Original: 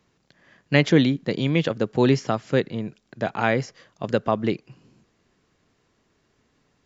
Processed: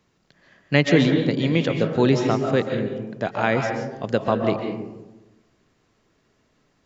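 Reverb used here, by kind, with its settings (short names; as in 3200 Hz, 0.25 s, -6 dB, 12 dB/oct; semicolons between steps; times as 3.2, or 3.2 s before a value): digital reverb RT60 1.1 s, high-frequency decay 0.35×, pre-delay 0.1 s, DRR 3.5 dB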